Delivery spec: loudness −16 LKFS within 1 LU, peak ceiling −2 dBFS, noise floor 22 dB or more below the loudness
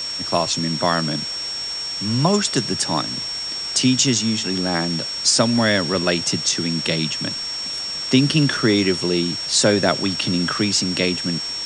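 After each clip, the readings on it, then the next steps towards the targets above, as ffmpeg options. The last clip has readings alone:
interfering tone 5,500 Hz; level of the tone −25 dBFS; background noise floor −28 dBFS; target noise floor −42 dBFS; integrated loudness −19.5 LKFS; sample peak −2.5 dBFS; target loudness −16.0 LKFS
→ -af "bandreject=frequency=5500:width=30"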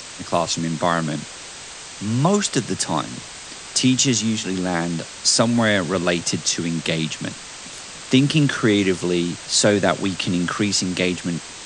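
interfering tone none found; background noise floor −37 dBFS; target noise floor −43 dBFS
→ -af "afftdn=noise_reduction=6:noise_floor=-37"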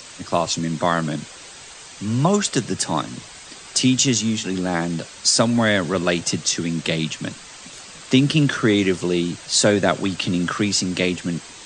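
background noise floor −41 dBFS; target noise floor −43 dBFS
→ -af "afftdn=noise_reduction=6:noise_floor=-41"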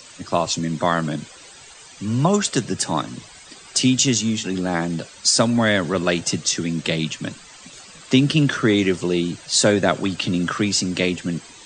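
background noise floor −44 dBFS; integrated loudness −20.5 LKFS; sample peak −3.5 dBFS; target loudness −16.0 LKFS
→ -af "volume=4.5dB,alimiter=limit=-2dB:level=0:latency=1"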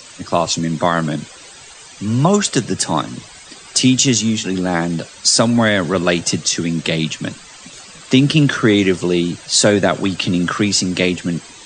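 integrated loudness −16.0 LKFS; sample peak −2.0 dBFS; background noise floor −39 dBFS

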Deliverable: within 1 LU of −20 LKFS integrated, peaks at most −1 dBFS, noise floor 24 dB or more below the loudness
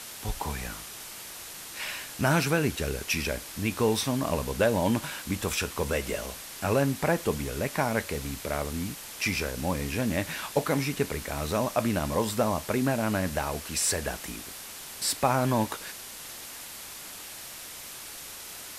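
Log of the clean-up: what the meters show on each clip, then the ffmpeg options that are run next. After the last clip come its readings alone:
background noise floor −42 dBFS; target noise floor −54 dBFS; integrated loudness −29.5 LKFS; sample peak −10.0 dBFS; target loudness −20.0 LKFS
→ -af "afftdn=noise_reduction=12:noise_floor=-42"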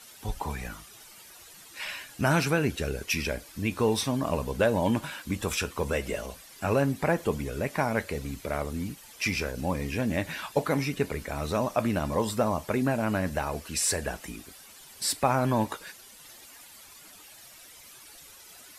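background noise floor −51 dBFS; target noise floor −53 dBFS
→ -af "afftdn=noise_reduction=6:noise_floor=-51"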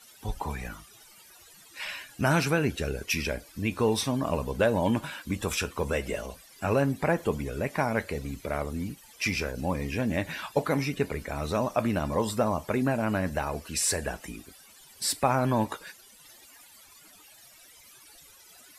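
background noise floor −54 dBFS; integrated loudness −29.0 LKFS; sample peak −10.5 dBFS; target loudness −20.0 LKFS
→ -af "volume=9dB"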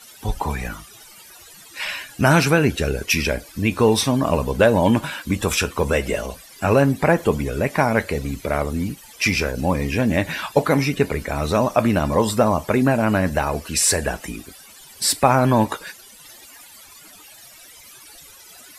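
integrated loudness −20.0 LKFS; sample peak −1.5 dBFS; background noise floor −45 dBFS

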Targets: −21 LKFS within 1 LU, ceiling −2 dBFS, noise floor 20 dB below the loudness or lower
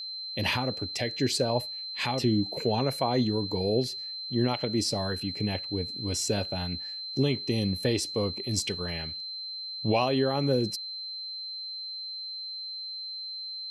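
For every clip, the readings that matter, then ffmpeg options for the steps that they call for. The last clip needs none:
interfering tone 4,100 Hz; level of the tone −35 dBFS; integrated loudness −29.5 LKFS; sample peak −14.0 dBFS; target loudness −21.0 LKFS
→ -af "bandreject=frequency=4100:width=30"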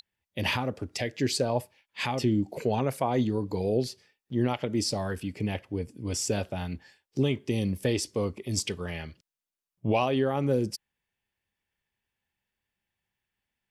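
interfering tone none found; integrated loudness −29.5 LKFS; sample peak −14.5 dBFS; target loudness −21.0 LKFS
→ -af "volume=8.5dB"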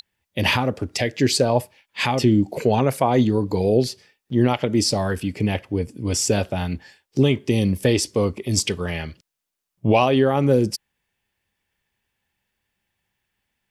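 integrated loudness −21.0 LKFS; sample peak −6.0 dBFS; background noise floor −82 dBFS

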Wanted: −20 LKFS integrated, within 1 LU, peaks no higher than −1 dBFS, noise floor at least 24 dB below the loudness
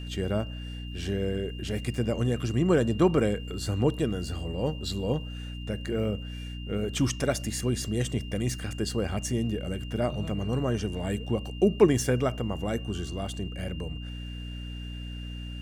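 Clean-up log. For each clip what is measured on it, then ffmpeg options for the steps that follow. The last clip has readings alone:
mains hum 60 Hz; hum harmonics up to 300 Hz; level of the hum −35 dBFS; interfering tone 2,800 Hz; level of the tone −45 dBFS; integrated loudness −29.5 LKFS; sample peak −6.0 dBFS; target loudness −20.0 LKFS
→ -af "bandreject=frequency=60:width_type=h:width=6,bandreject=frequency=120:width_type=h:width=6,bandreject=frequency=180:width_type=h:width=6,bandreject=frequency=240:width_type=h:width=6,bandreject=frequency=300:width_type=h:width=6"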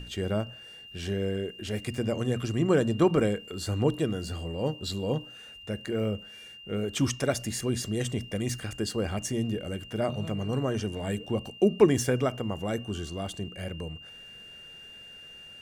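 mains hum none found; interfering tone 2,800 Hz; level of the tone −45 dBFS
→ -af "bandreject=frequency=2800:width=30"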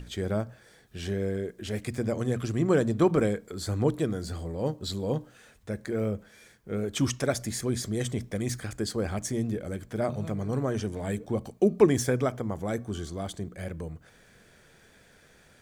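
interfering tone none found; integrated loudness −30.0 LKFS; sample peak −6.5 dBFS; target loudness −20.0 LKFS
→ -af "volume=10dB,alimiter=limit=-1dB:level=0:latency=1"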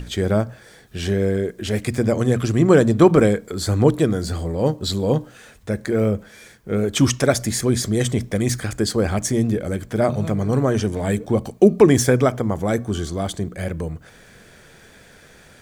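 integrated loudness −20.0 LKFS; sample peak −1.0 dBFS; background noise floor −48 dBFS

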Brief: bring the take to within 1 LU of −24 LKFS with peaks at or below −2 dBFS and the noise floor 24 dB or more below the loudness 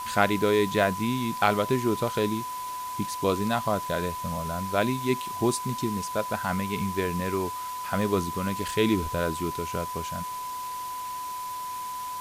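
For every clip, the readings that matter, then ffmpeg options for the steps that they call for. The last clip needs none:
interfering tone 1,000 Hz; level of the tone −32 dBFS; background noise floor −35 dBFS; target noise floor −52 dBFS; integrated loudness −28.0 LKFS; sample peak −5.5 dBFS; target loudness −24.0 LKFS
→ -af "bandreject=frequency=1000:width=30"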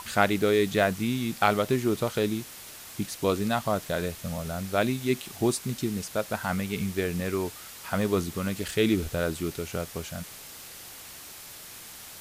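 interfering tone none found; background noise floor −45 dBFS; target noise floor −52 dBFS
→ -af "afftdn=noise_reduction=7:noise_floor=-45"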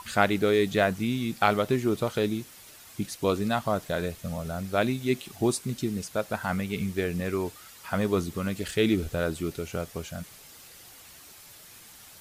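background noise floor −50 dBFS; target noise floor −53 dBFS
→ -af "afftdn=noise_reduction=6:noise_floor=-50"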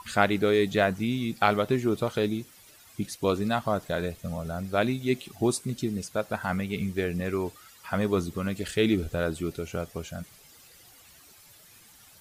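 background noise floor −54 dBFS; integrated loudness −28.5 LKFS; sample peak −5.5 dBFS; target loudness −24.0 LKFS
→ -af "volume=4.5dB,alimiter=limit=-2dB:level=0:latency=1"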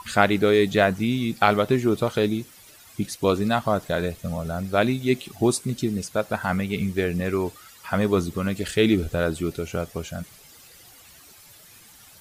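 integrated loudness −24.0 LKFS; sample peak −2.0 dBFS; background noise floor −50 dBFS

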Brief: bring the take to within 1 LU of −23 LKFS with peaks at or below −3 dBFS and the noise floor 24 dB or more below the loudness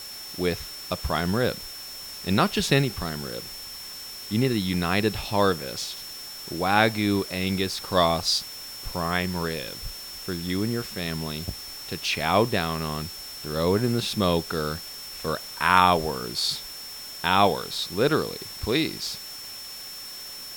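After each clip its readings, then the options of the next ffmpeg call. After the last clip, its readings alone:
interfering tone 5,400 Hz; level of the tone −38 dBFS; background noise floor −39 dBFS; target noise floor −50 dBFS; integrated loudness −26.0 LKFS; sample peak −3.0 dBFS; target loudness −23.0 LKFS
→ -af "bandreject=frequency=5400:width=30"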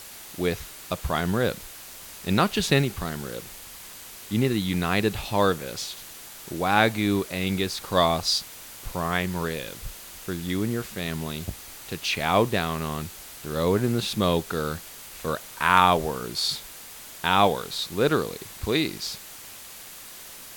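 interfering tone none found; background noise floor −43 dBFS; target noise floor −50 dBFS
→ -af "afftdn=noise_reduction=7:noise_floor=-43"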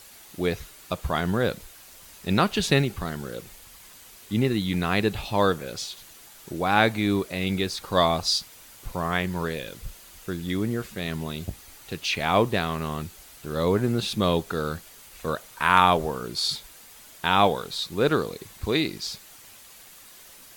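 background noise floor −49 dBFS; target noise floor −50 dBFS
→ -af "afftdn=noise_reduction=6:noise_floor=-49"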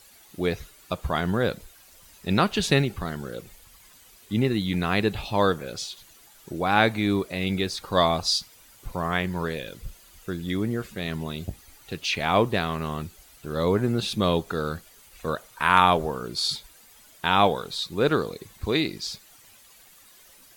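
background noise floor −53 dBFS; integrated loudness −25.5 LKFS; sample peak −2.5 dBFS; target loudness −23.0 LKFS
→ -af "volume=2.5dB,alimiter=limit=-3dB:level=0:latency=1"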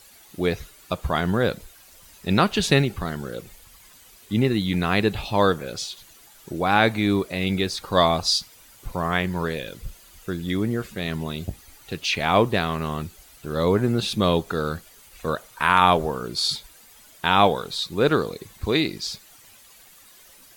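integrated loudness −23.5 LKFS; sample peak −3.0 dBFS; background noise floor −51 dBFS

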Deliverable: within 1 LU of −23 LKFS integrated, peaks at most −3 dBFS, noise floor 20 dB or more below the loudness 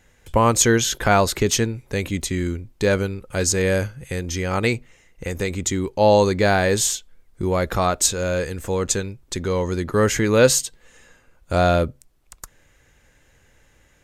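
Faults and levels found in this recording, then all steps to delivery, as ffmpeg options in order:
integrated loudness −20.5 LKFS; sample peak −2.0 dBFS; target loudness −23.0 LKFS
→ -af "volume=-2.5dB"

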